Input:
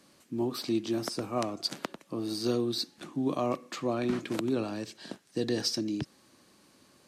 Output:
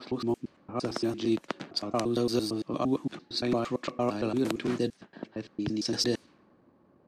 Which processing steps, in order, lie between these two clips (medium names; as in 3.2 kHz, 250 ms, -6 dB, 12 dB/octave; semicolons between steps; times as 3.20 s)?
slices played last to first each 114 ms, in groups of 6; level-controlled noise filter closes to 790 Hz, open at -26.5 dBFS; trim +2 dB